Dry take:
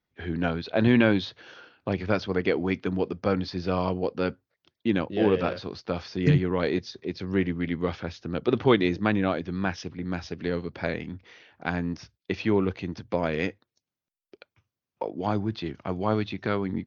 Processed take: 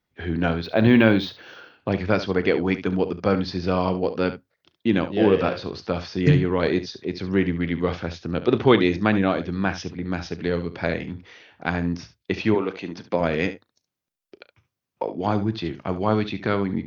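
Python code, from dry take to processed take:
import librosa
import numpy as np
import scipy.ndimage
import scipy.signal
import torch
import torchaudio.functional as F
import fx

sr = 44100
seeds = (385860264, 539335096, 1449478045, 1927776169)

y = fx.highpass(x, sr, hz=fx.line((12.54, 430.0), (13.19, 140.0)), slope=12, at=(12.54, 13.19), fade=0.02)
y = fx.room_early_taps(y, sr, ms=(36, 70), db=(-17.0, -13.0))
y = fx.resample_linear(y, sr, factor=2, at=(0.64, 1.9))
y = y * librosa.db_to_amplitude(4.0)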